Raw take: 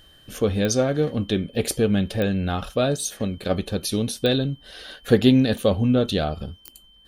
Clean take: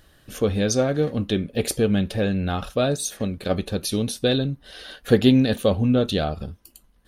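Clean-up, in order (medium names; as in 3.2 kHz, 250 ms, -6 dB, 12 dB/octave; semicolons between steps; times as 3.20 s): de-click; band-stop 3.1 kHz, Q 30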